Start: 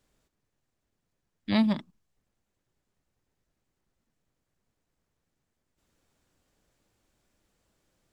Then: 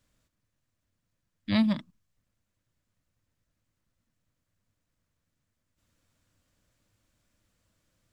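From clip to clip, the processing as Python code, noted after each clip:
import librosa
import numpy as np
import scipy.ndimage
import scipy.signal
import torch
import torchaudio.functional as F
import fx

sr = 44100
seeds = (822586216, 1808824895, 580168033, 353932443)

y = fx.graphic_eq_31(x, sr, hz=(100, 400, 800), db=(8, -11, -8))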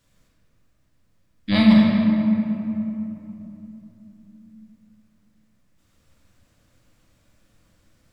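y = fx.room_shoebox(x, sr, seeds[0], volume_m3=150.0, walls='hard', distance_m=0.74)
y = y * librosa.db_to_amplitude(5.5)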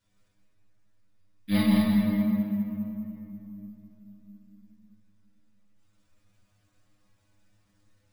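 y = fx.stiff_resonator(x, sr, f0_hz=100.0, decay_s=0.26, stiffness=0.002)
y = y + 10.0 ** (-6.5 / 20.0) * np.pad(y, (int(207 * sr / 1000.0), 0))[:len(y)]
y = np.repeat(y[::3], 3)[:len(y)]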